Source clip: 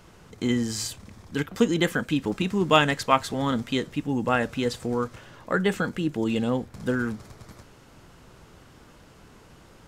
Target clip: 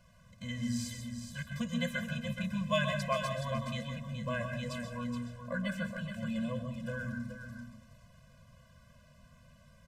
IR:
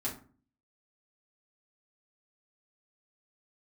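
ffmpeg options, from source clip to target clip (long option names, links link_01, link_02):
-filter_complex "[0:a]aecho=1:1:423:0.398,asplit=2[link_01][link_02];[1:a]atrim=start_sample=2205,adelay=126[link_03];[link_02][link_03]afir=irnorm=-1:irlink=0,volume=-7dB[link_04];[link_01][link_04]amix=inputs=2:normalize=0,afftfilt=real='re*eq(mod(floor(b*sr/1024/240),2),0)':imag='im*eq(mod(floor(b*sr/1024/240),2),0)':win_size=1024:overlap=0.75,volume=-9dB"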